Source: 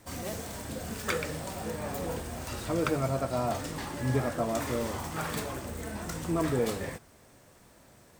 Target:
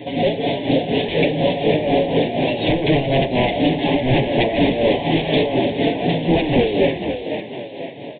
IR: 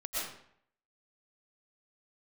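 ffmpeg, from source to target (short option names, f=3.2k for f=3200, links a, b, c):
-filter_complex "[0:a]highpass=200,aecho=1:1:7.1:0.86,asplit=2[a][b];[b]acompressor=threshold=-36dB:ratio=6,volume=-2dB[c];[a][c]amix=inputs=2:normalize=0,aeval=exprs='0.178*sin(PI/2*3.55*val(0)/0.178)':c=same,tremolo=f=4.1:d=0.64,asplit=2[d][e];[e]asplit=5[f][g][h][i][j];[f]adelay=499,afreqshift=55,volume=-8dB[k];[g]adelay=998,afreqshift=110,volume=-14.9dB[l];[h]adelay=1497,afreqshift=165,volume=-21.9dB[m];[i]adelay=1996,afreqshift=220,volume=-28.8dB[n];[j]adelay=2495,afreqshift=275,volume=-35.7dB[o];[k][l][m][n][o]amix=inputs=5:normalize=0[p];[d][p]amix=inputs=2:normalize=0,aresample=8000,aresample=44100,asuperstop=centerf=1300:order=4:qfactor=0.79,volume=6dB"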